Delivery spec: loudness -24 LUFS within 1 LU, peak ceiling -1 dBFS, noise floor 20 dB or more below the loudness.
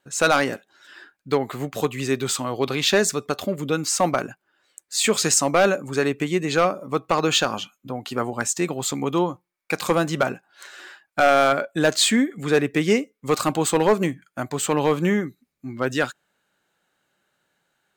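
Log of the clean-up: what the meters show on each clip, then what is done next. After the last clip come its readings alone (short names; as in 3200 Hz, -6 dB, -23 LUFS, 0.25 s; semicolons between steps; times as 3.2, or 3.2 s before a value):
clipped 0.8%; flat tops at -10.0 dBFS; loudness -22.0 LUFS; peak -10.0 dBFS; loudness target -24.0 LUFS
-> clip repair -10 dBFS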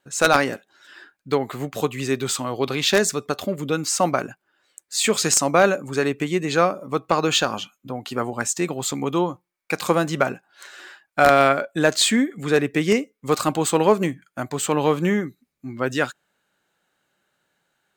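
clipped 0.0%; loudness -21.5 LUFS; peak -1.0 dBFS; loudness target -24.0 LUFS
-> gain -2.5 dB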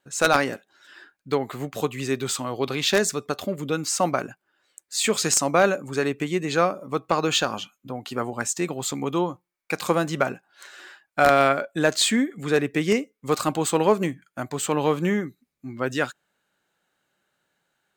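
loudness -24.0 LUFS; peak -3.5 dBFS; noise floor -80 dBFS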